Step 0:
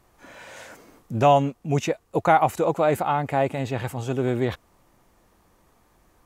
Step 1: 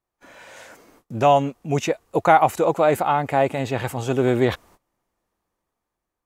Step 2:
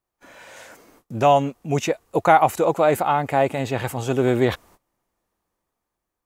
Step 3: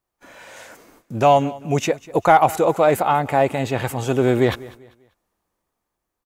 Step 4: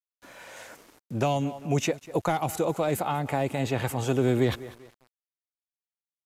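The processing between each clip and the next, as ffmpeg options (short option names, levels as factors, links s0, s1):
-af "agate=range=0.0794:threshold=0.00224:ratio=16:detection=peak,bass=f=250:g=-4,treble=f=4000:g=0,dynaudnorm=f=380:g=7:m=3.76,volume=0.891"
-af "highshelf=f=9300:g=4"
-filter_complex "[0:a]asplit=2[s0][s1];[s1]asoftclip=type=hard:threshold=0.316,volume=0.398[s2];[s0][s2]amix=inputs=2:normalize=0,aecho=1:1:196|392|588:0.1|0.033|0.0109,volume=0.891"
-filter_complex "[0:a]acrossover=split=310|3000[s0][s1][s2];[s1]acompressor=threshold=0.0708:ratio=6[s3];[s0][s3][s2]amix=inputs=3:normalize=0,aeval=exprs='val(0)*gte(abs(val(0)),0.00422)':c=same,aresample=32000,aresample=44100,volume=0.668"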